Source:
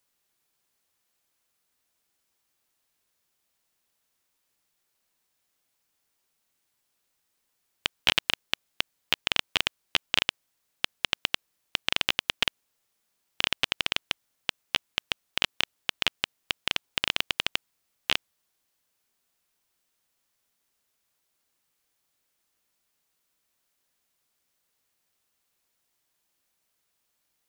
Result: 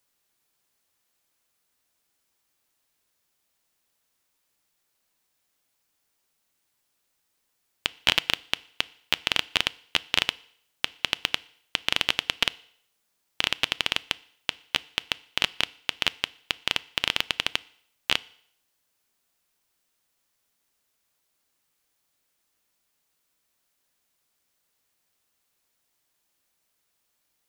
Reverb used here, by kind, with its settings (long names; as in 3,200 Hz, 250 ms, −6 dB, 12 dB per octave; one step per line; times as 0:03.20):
feedback delay network reverb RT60 0.65 s, low-frequency decay 0.8×, high-frequency decay 1×, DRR 18.5 dB
level +1.5 dB